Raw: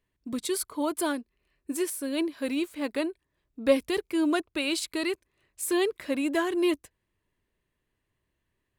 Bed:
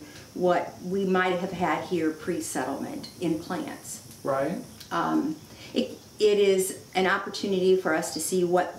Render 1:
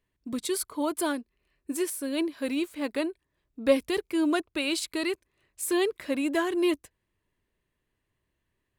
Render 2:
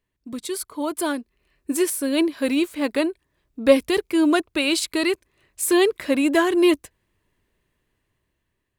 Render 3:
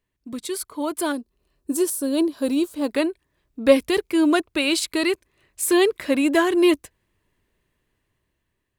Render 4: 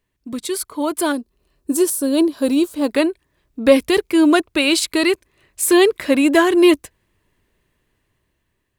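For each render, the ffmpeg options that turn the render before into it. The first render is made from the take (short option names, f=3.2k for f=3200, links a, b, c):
-af anull
-af "dynaudnorm=f=350:g=7:m=8.5dB"
-filter_complex "[0:a]asettb=1/sr,asplit=3[a][b][c];[a]atrim=end=1.124[d];[b]atrim=start=1.12:end=2.89,asetpts=PTS-STARTPTS,afade=t=in:d=0.004:c=qsin,afade=t=out:st=1.766:d=0.004:c=qsin,equalizer=f=2.1k:t=o:w=0.91:g=-14[e];[c]atrim=start=2.886[f];[d][e]acrossfade=d=0.004:c1=hsin:c2=qsin[g];[g][f]acrossfade=d=0.004:c1=qsin:c2=hsin"
-af "volume=5dB,alimiter=limit=-1dB:level=0:latency=1"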